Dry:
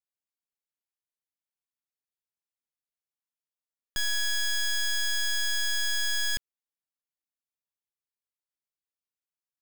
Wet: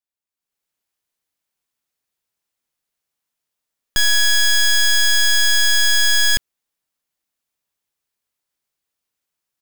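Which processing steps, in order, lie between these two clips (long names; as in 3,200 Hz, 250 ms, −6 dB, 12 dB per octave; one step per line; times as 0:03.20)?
automatic gain control gain up to 13 dB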